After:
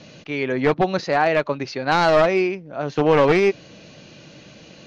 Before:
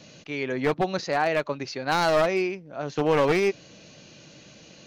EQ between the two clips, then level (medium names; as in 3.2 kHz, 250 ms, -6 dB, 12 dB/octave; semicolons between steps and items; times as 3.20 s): distance through air 100 m; +6.0 dB